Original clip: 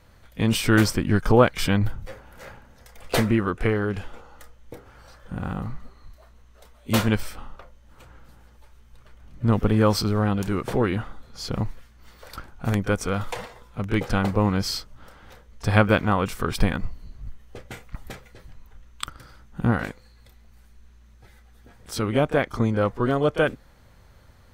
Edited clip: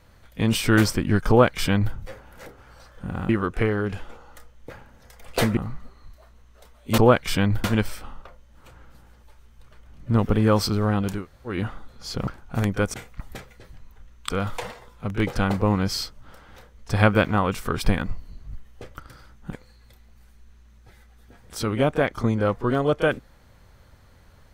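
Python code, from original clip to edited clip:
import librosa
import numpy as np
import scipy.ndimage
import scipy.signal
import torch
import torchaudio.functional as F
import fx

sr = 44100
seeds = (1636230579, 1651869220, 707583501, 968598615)

y = fx.edit(x, sr, fx.duplicate(start_s=1.29, length_s=0.66, to_s=6.98),
    fx.swap(start_s=2.46, length_s=0.87, other_s=4.74, other_length_s=0.83),
    fx.room_tone_fill(start_s=10.53, length_s=0.33, crossfade_s=0.16),
    fx.cut(start_s=11.61, length_s=0.76),
    fx.move(start_s=17.69, length_s=1.36, to_s=13.04),
    fx.cut(start_s=19.63, length_s=0.26), tone=tone)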